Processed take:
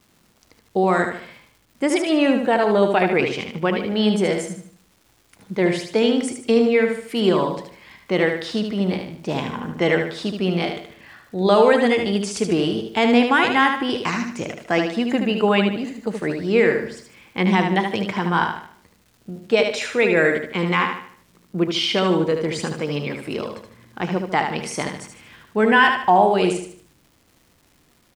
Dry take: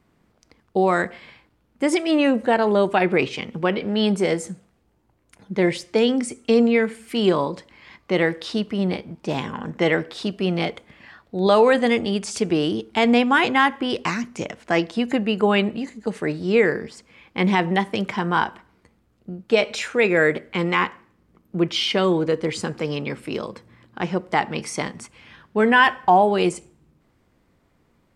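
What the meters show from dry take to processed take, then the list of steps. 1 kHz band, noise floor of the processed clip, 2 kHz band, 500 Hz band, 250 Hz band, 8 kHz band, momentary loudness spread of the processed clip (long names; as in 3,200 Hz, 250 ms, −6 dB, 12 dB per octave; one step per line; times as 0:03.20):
+1.0 dB, −59 dBFS, +1.0 dB, +1.5 dB, +1.0 dB, +1.0 dB, 13 LU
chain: surface crackle 470 per second −46 dBFS
on a send: repeating echo 75 ms, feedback 39%, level −6 dB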